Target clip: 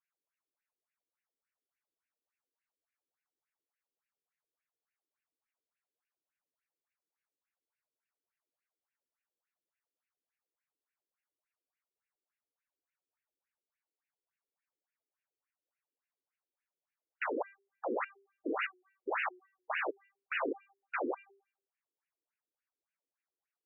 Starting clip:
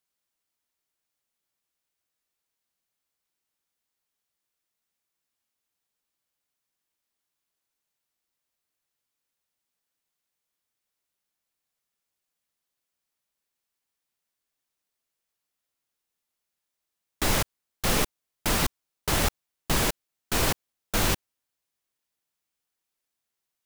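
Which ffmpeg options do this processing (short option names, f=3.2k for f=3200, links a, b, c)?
-filter_complex "[0:a]bandreject=f=394.9:t=h:w=4,bandreject=f=789.8:t=h:w=4,bandreject=f=1.1847k:t=h:w=4,bandreject=f=1.5796k:t=h:w=4,bandreject=f=1.9745k:t=h:w=4,bandreject=f=2.3694k:t=h:w=4,bandreject=f=2.7643k:t=h:w=4,bandreject=f=3.1592k:t=h:w=4,bandreject=f=3.5541k:t=h:w=4,bandreject=f=3.949k:t=h:w=4,bandreject=f=4.3439k:t=h:w=4,bandreject=f=4.7388k:t=h:w=4,bandreject=f=5.1337k:t=h:w=4,bandreject=f=5.5286k:t=h:w=4,bandreject=f=5.9235k:t=h:w=4,bandreject=f=6.3184k:t=h:w=4,bandreject=f=6.7133k:t=h:w=4,bandreject=f=7.1082k:t=h:w=4,bandreject=f=7.5031k:t=h:w=4,bandreject=f=7.898k:t=h:w=4,bandreject=f=8.2929k:t=h:w=4,bandreject=f=8.6878k:t=h:w=4,bandreject=f=9.0827k:t=h:w=4,bandreject=f=9.4776k:t=h:w=4,bandreject=f=9.8725k:t=h:w=4,bandreject=f=10.2674k:t=h:w=4,bandreject=f=10.6623k:t=h:w=4,bandreject=f=11.0572k:t=h:w=4,bandreject=f=11.4521k:t=h:w=4,bandreject=f=11.847k:t=h:w=4,bandreject=f=12.2419k:t=h:w=4,bandreject=f=12.6368k:t=h:w=4,bandreject=f=13.0317k:t=h:w=4,asettb=1/sr,asplit=3[a][b][c];[a]atrim=end=18.644[d];[b]atrim=start=18.64:end=19.77,asetpts=PTS-STARTPTS,afade=t=in:d=0.004:c=qsin,afade=t=out:st=1.126:d=0.004:c=qsin,afreqshift=-31[e];[c]atrim=start=19.766[f];[d][e]acrossfade=d=0.004:c1=hsin:c2=qsin[g];[g][f]acrossfade=d=0.004:c1=qsin:c2=hsin,afftfilt=real='re*between(b*sr/1024,340*pow(2100/340,0.5+0.5*sin(2*PI*3.5*pts/sr))/1.41,340*pow(2100/340,0.5+0.5*sin(2*PI*3.5*pts/sr))*1.41)':imag='im*between(b*sr/1024,340*pow(2100/340,0.5+0.5*sin(2*PI*3.5*pts/sr))/1.41,340*pow(2100/340,0.5+0.5*sin(2*PI*3.5*pts/sr))*1.41)':win_size=1024:overlap=0.75"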